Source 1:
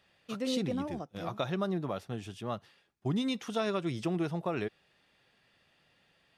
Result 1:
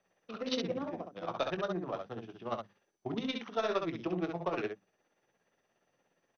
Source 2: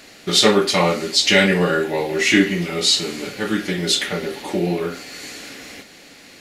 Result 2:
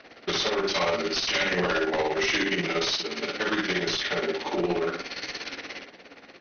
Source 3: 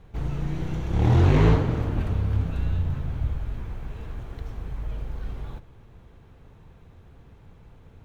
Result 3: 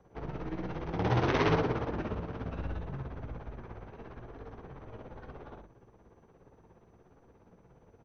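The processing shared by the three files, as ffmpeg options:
ffmpeg -i in.wav -filter_complex "[0:a]aemphasis=mode=production:type=bsi,bandreject=frequency=50:width_type=h:width=6,bandreject=frequency=100:width_type=h:width=6,bandreject=frequency=150:width_type=h:width=6,bandreject=frequency=200:width_type=h:width=6,bandreject=frequency=250:width_type=h:width=6,bandreject=frequency=300:width_type=h:width=6,acompressor=threshold=-18dB:ratio=10,tremolo=f=17:d=0.68,aeval=exprs='0.398*(cos(1*acos(clip(val(0)/0.398,-1,1)))-cos(1*PI/2))+0.178*(cos(3*acos(clip(val(0)/0.398,-1,1)))-cos(3*PI/2))+0.0794*(cos(7*acos(clip(val(0)/0.398,-1,1)))-cos(7*PI/2))':channel_layout=same,acrossover=split=240|520[link_01][link_02][link_03];[link_01]flanger=delay=16:depth=2.7:speed=1.7[link_04];[link_03]adynamicsmooth=sensitivity=4:basefreq=1000[link_05];[link_04][link_02][link_05]amix=inputs=3:normalize=0,aecho=1:1:22|66:0.237|0.562,volume=-1dB" -ar 24000 -c:a mp2 -b:a 48k out.mp2

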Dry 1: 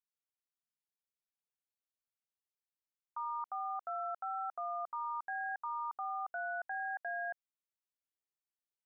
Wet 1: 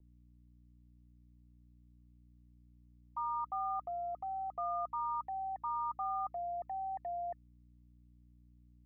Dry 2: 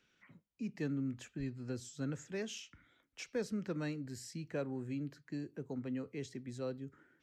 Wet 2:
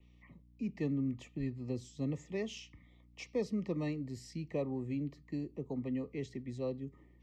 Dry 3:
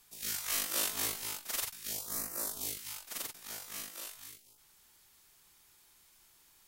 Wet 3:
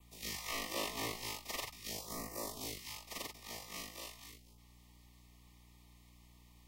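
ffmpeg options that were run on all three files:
ffmpeg -i in.wav -filter_complex "[0:a]aeval=exprs='val(0)+0.000631*(sin(2*PI*60*n/s)+sin(2*PI*2*60*n/s)/2+sin(2*PI*3*60*n/s)/3+sin(2*PI*4*60*n/s)/4+sin(2*PI*5*60*n/s)/5)':channel_layout=same,adynamicequalizer=threshold=0.002:dfrequency=5200:dqfactor=3.1:tfrequency=5200:tqfactor=3.1:attack=5:release=100:ratio=0.375:range=2:mode=boostabove:tftype=bell,asuperstop=centerf=1500:order=20:qfactor=2.8,acrossover=split=300|520|2800[link_01][link_02][link_03][link_04];[link_04]alimiter=level_in=3dB:limit=-24dB:level=0:latency=1:release=218,volume=-3dB[link_05];[link_01][link_02][link_03][link_05]amix=inputs=4:normalize=0,equalizer=frequency=12000:width_type=o:width=2:gain=-12.5,volume=3dB" out.wav

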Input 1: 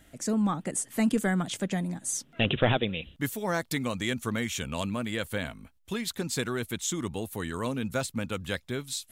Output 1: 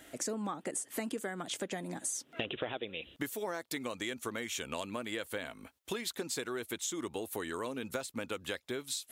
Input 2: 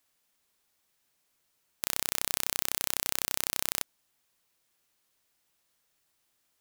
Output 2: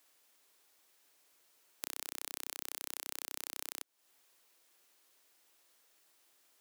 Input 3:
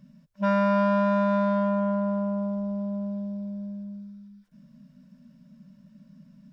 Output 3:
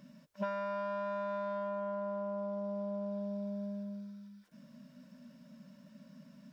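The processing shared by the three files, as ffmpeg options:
ffmpeg -i in.wav -af "highpass=frequency=120:poles=1,lowshelf=frequency=250:width_type=q:width=1.5:gain=-7.5,acompressor=threshold=-39dB:ratio=10,volume=5dB" out.wav

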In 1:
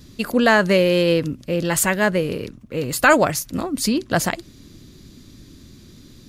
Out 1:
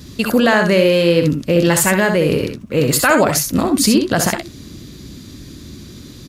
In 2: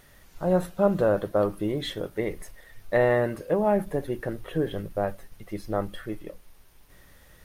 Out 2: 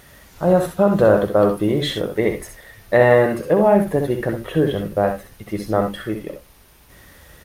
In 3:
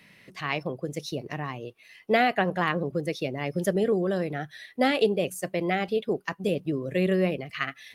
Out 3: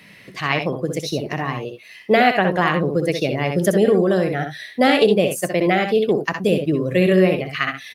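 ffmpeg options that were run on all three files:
ffmpeg -i in.wav -af "highpass=42,alimiter=limit=-13dB:level=0:latency=1:release=108,aecho=1:1:64|78:0.447|0.237,volume=8.5dB" out.wav

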